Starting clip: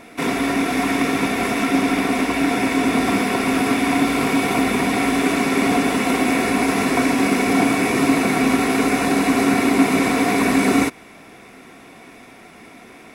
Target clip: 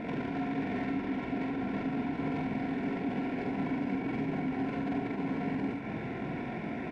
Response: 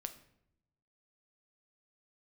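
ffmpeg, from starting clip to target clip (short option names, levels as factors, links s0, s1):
-filter_complex "[0:a]lowpass=2000,equalizer=f=140:w=1:g=10,acompressor=threshold=0.0501:ratio=6,alimiter=level_in=1.88:limit=0.0631:level=0:latency=1:release=54,volume=0.531,acontrast=57,asoftclip=type=tanh:threshold=0.0398,atempo=1.9,asuperstop=centerf=1200:order=4:qfactor=4.2,asplit=2[s0][s1];[s1]aecho=0:1:45|77:0.708|0.501[s2];[s0][s2]amix=inputs=2:normalize=0,volume=0.794"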